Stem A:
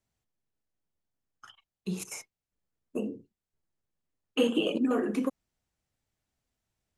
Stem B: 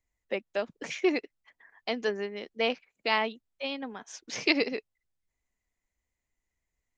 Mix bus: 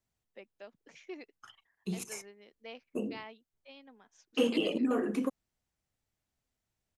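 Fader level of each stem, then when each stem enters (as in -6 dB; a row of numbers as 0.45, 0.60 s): -2.5, -19.0 dB; 0.00, 0.05 s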